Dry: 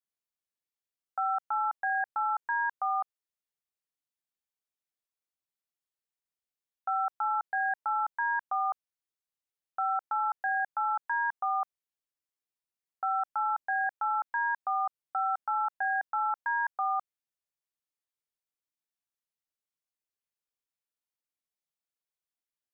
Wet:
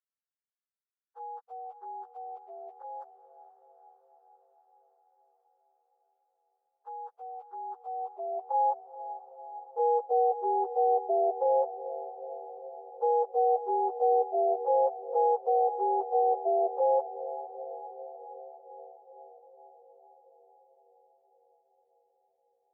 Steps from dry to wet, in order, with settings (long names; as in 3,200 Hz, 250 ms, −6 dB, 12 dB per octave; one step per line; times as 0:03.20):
frequency axis turned over on the octave scale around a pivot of 800 Hz
high-pass filter sweep 1,500 Hz → 550 Hz, 0:07.51–0:09.31
feedback delay with all-pass diffusion 462 ms, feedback 70%, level −13.5 dB